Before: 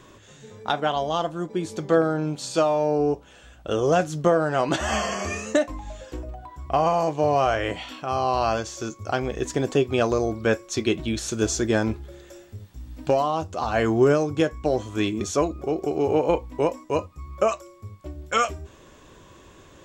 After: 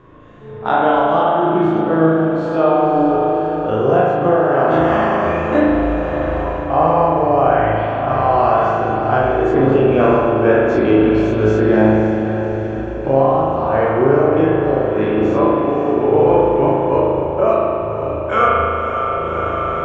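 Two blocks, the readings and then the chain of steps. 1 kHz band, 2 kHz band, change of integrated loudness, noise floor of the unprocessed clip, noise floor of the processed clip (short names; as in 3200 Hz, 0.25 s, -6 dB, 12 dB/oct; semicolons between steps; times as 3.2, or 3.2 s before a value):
+10.5 dB, +7.5 dB, +9.0 dB, -50 dBFS, -23 dBFS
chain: spectral dilation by 60 ms; LPF 1600 Hz 12 dB/oct; diffused feedback echo 0.547 s, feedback 64%, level -9.5 dB; spring tank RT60 2 s, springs 37 ms, chirp 40 ms, DRR -4.5 dB; AGC; gain -1 dB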